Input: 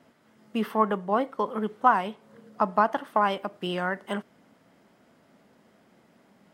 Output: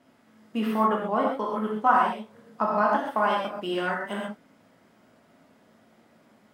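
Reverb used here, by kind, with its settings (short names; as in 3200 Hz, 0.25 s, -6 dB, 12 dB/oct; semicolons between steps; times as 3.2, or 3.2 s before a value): non-linear reverb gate 0.16 s flat, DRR -3 dB; gain -3.5 dB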